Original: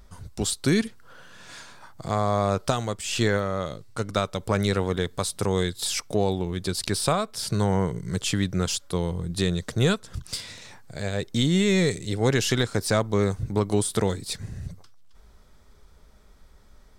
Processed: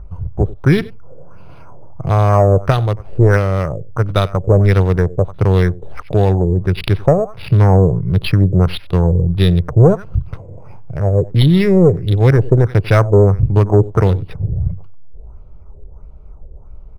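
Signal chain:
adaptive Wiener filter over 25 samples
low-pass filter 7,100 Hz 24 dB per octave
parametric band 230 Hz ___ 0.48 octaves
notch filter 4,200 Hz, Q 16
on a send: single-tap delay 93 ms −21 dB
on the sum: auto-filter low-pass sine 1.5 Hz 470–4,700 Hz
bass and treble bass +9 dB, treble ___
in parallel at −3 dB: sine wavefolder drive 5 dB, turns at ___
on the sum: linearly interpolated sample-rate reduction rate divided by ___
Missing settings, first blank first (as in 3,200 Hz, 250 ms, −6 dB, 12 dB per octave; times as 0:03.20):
−14 dB, −6 dB, −4.5 dBFS, 6×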